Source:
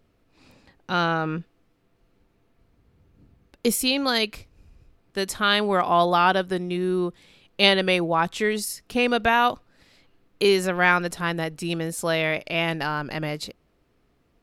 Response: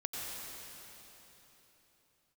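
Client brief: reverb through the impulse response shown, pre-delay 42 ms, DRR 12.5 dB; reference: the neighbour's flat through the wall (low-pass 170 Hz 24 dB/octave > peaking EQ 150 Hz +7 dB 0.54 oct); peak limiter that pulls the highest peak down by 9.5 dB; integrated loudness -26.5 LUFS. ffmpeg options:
-filter_complex "[0:a]alimiter=limit=0.251:level=0:latency=1,asplit=2[s0][s1];[1:a]atrim=start_sample=2205,adelay=42[s2];[s1][s2]afir=irnorm=-1:irlink=0,volume=0.178[s3];[s0][s3]amix=inputs=2:normalize=0,lowpass=f=170:w=0.5412,lowpass=f=170:w=1.3066,equalizer=f=150:t=o:w=0.54:g=7,volume=2.37"

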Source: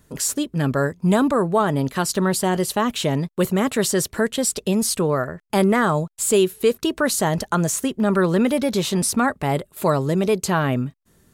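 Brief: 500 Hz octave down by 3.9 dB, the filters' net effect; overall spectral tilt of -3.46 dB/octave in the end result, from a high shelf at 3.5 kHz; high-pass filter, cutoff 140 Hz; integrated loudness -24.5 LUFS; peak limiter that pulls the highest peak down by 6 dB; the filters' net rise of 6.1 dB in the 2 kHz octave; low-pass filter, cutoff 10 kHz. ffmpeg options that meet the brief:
-af "highpass=140,lowpass=10000,equalizer=f=500:t=o:g=-5.5,equalizer=f=2000:t=o:g=7.5,highshelf=f=3500:g=3.5,volume=0.75,alimiter=limit=0.224:level=0:latency=1"

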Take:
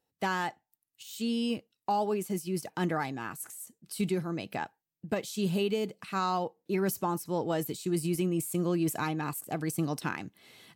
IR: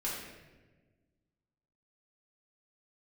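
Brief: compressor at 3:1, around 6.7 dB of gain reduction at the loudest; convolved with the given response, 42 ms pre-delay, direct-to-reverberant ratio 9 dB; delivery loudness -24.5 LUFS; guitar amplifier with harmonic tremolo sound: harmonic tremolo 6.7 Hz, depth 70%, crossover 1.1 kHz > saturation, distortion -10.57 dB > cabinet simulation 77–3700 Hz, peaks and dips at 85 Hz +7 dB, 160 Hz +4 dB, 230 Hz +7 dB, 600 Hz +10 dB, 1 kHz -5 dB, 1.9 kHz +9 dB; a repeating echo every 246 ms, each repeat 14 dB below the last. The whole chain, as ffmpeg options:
-filter_complex "[0:a]acompressor=threshold=0.02:ratio=3,aecho=1:1:246|492:0.2|0.0399,asplit=2[s0][s1];[1:a]atrim=start_sample=2205,adelay=42[s2];[s1][s2]afir=irnorm=-1:irlink=0,volume=0.224[s3];[s0][s3]amix=inputs=2:normalize=0,acrossover=split=1100[s4][s5];[s4]aeval=exprs='val(0)*(1-0.7/2+0.7/2*cos(2*PI*6.7*n/s))':c=same[s6];[s5]aeval=exprs='val(0)*(1-0.7/2-0.7/2*cos(2*PI*6.7*n/s))':c=same[s7];[s6][s7]amix=inputs=2:normalize=0,asoftclip=threshold=0.0141,highpass=77,equalizer=f=85:t=q:w=4:g=7,equalizer=f=160:t=q:w=4:g=4,equalizer=f=230:t=q:w=4:g=7,equalizer=f=600:t=q:w=4:g=10,equalizer=f=1000:t=q:w=4:g=-5,equalizer=f=1900:t=q:w=4:g=9,lowpass=f=3700:w=0.5412,lowpass=f=3700:w=1.3066,volume=6.68"

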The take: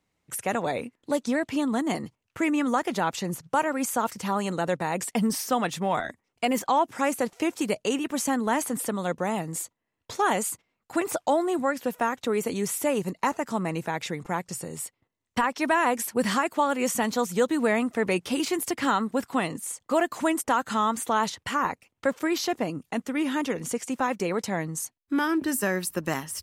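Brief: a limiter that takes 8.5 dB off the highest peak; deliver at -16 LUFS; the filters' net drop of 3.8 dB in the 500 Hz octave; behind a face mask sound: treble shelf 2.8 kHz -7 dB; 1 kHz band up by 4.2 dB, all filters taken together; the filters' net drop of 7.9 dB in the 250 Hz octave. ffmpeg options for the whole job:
-af "equalizer=f=250:t=o:g=-9,equalizer=f=500:t=o:g=-5,equalizer=f=1000:t=o:g=8,alimiter=limit=0.15:level=0:latency=1,highshelf=f=2800:g=-7,volume=5.31"

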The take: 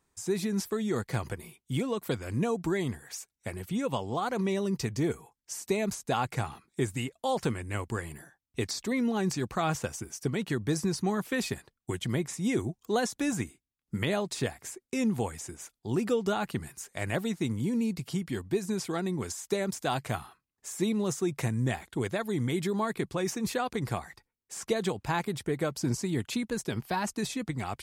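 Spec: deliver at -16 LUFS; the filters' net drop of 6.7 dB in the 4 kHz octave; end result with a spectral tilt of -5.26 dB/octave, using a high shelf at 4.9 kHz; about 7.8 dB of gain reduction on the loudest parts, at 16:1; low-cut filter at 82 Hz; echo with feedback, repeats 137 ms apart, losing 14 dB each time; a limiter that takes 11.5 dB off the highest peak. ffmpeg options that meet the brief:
-af "highpass=82,equalizer=f=4000:t=o:g=-6.5,highshelf=f=4900:g=-4.5,acompressor=threshold=0.0282:ratio=16,alimiter=level_in=2.37:limit=0.0631:level=0:latency=1,volume=0.422,aecho=1:1:137|274:0.2|0.0399,volume=18.8"

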